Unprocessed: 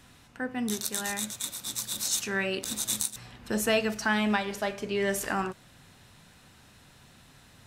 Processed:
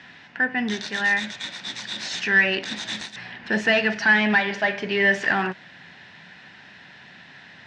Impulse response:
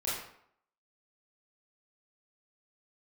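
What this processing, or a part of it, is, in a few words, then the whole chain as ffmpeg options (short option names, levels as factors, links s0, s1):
overdrive pedal into a guitar cabinet: -filter_complex "[0:a]asplit=2[s0][s1];[s1]highpass=f=720:p=1,volume=8.91,asoftclip=type=tanh:threshold=0.335[s2];[s0][s2]amix=inputs=2:normalize=0,lowpass=f=5400:p=1,volume=0.501,highpass=80,equalizer=f=180:t=q:w=4:g=8,equalizer=f=500:t=q:w=4:g=-5,equalizer=f=1200:t=q:w=4:g=-9,equalizer=f=1800:t=q:w=4:g=9,equalizer=f=4000:t=q:w=4:g=-4,lowpass=f=4600:w=0.5412,lowpass=f=4600:w=1.3066,volume=0.891"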